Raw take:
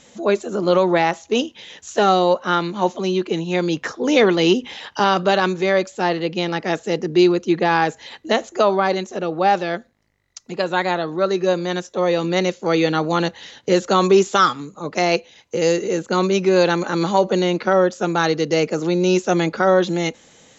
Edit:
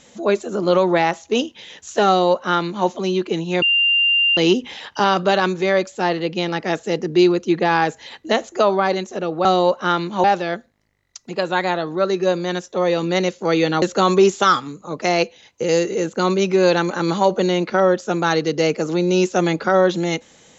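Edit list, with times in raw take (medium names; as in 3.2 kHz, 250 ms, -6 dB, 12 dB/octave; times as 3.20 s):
2.08–2.87 s: copy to 9.45 s
3.62–4.37 s: bleep 2.79 kHz -13 dBFS
13.03–13.75 s: delete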